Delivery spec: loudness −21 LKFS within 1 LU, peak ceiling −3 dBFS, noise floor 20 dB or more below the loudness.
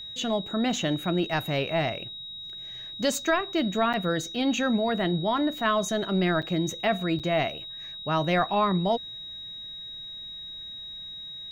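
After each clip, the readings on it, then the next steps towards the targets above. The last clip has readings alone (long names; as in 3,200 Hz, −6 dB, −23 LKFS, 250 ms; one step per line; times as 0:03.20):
number of dropouts 3; longest dropout 7.4 ms; interfering tone 3,800 Hz; level of the tone −37 dBFS; integrated loudness −27.5 LKFS; sample peak −12.5 dBFS; target loudness −21.0 LKFS
→ repair the gap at 0:03.93/0:06.42/0:07.19, 7.4 ms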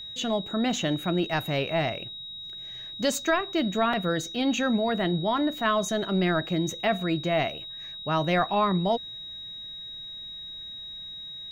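number of dropouts 0; interfering tone 3,800 Hz; level of the tone −37 dBFS
→ notch filter 3,800 Hz, Q 30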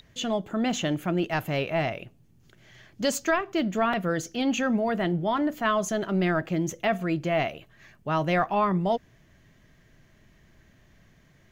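interfering tone none found; integrated loudness −27.0 LKFS; sample peak −13.0 dBFS; target loudness −21.0 LKFS
→ level +6 dB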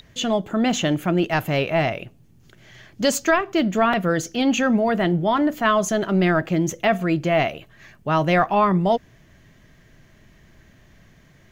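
integrated loudness −21.0 LKFS; sample peak −7.0 dBFS; background noise floor −53 dBFS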